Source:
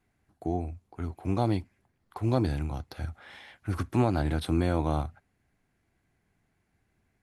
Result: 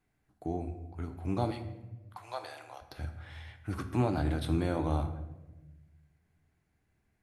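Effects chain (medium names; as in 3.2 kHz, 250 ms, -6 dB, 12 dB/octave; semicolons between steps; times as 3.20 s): 1.50–2.81 s: high-pass 1.1 kHz -> 510 Hz 24 dB/octave; reverberation RT60 1.1 s, pre-delay 6 ms, DRR 7 dB; trim -4.5 dB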